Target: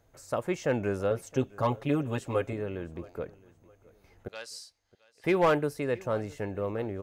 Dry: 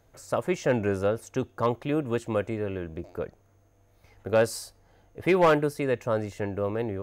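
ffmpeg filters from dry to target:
-filter_complex "[0:a]asettb=1/sr,asplit=3[a][b][c];[a]atrim=end=1.104[d];[b]atrim=start=1.1:end=2.53,asetpts=PTS-STARTPTS,afade=t=in:d=0.004:c=qsin,afade=t=out:st=1.426:d=0.004:c=qsin,aecho=1:1:7.3:0.88,atrim=end_sample=63063[e];[c]atrim=start=2.526[f];[d][e]acrossfade=d=0.004:c1=hsin:c2=qsin[g];[g][f]acrossfade=d=0.004:c1=qsin:c2=hsin,asettb=1/sr,asplit=3[h][i][j];[h]atrim=end=4.284[k];[i]atrim=start=4.28:end=5.24,asetpts=PTS-STARTPTS,afade=t=in:d=0.004:c=qsin,afade=t=out:st=0.956:d=0.004:c=qsin,bandpass=f=4.4k:t=q:w=1.2:csg=0[l];[j]atrim=start=5.236[m];[k][l]acrossfade=d=0.004:c1=hsin:c2=qsin[n];[n][m]acrossfade=d=0.004:c1=qsin:c2=hsin,aecho=1:1:667|1334:0.075|0.0255,volume=-3.5dB"

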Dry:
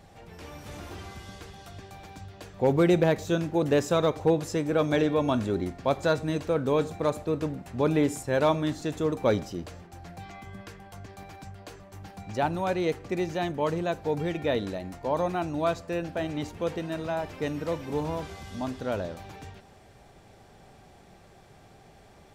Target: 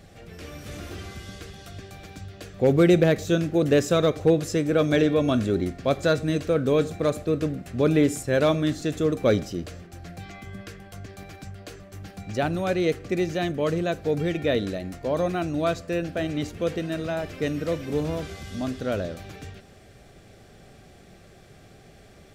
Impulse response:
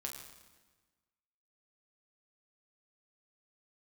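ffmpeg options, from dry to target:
-af "equalizer=f=910:w=3.5:g=-14.5,volume=4.5dB"

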